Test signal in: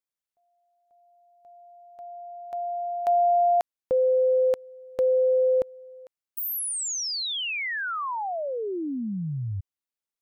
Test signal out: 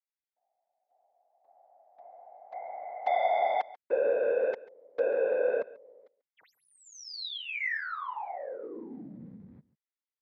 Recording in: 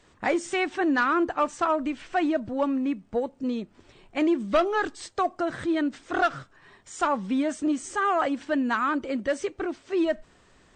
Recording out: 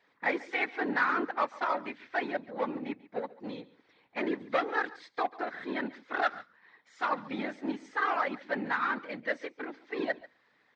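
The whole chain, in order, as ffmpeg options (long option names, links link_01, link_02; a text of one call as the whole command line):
ffmpeg -i in.wav -filter_complex "[0:a]aeval=exprs='0.211*(cos(1*acos(clip(val(0)/0.211,-1,1)))-cos(1*PI/2))+0.00335*(cos(2*acos(clip(val(0)/0.211,-1,1)))-cos(2*PI/2))+0.0119*(cos(7*acos(clip(val(0)/0.211,-1,1)))-cos(7*PI/2))':channel_layout=same,afftfilt=real='hypot(re,im)*cos(2*PI*random(0))':imag='hypot(re,im)*sin(2*PI*random(1))':win_size=512:overlap=0.75,highpass=330,equalizer=frequency=370:width_type=q:width=4:gain=-8,equalizer=frequency=640:width_type=q:width=4:gain=-6,equalizer=frequency=1200:width_type=q:width=4:gain=-3,equalizer=frequency=2000:width_type=q:width=4:gain=6,equalizer=frequency=2900:width_type=q:width=4:gain=-7,lowpass=frequency=4300:width=0.5412,lowpass=frequency=4300:width=1.3066,asplit=2[link_01][link_02];[link_02]aecho=0:1:140:0.106[link_03];[link_01][link_03]amix=inputs=2:normalize=0,volume=3.5dB" out.wav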